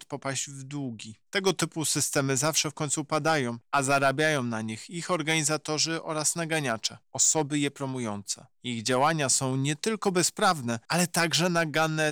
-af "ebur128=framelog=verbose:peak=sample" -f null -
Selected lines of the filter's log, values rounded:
Integrated loudness:
  I:         -26.6 LUFS
  Threshold: -36.7 LUFS
Loudness range:
  LRA:         2.1 LU
  Threshold: -46.6 LUFS
  LRA low:   -27.5 LUFS
  LRA high:  -25.4 LUFS
Sample peak:
  Peak:      -14.1 dBFS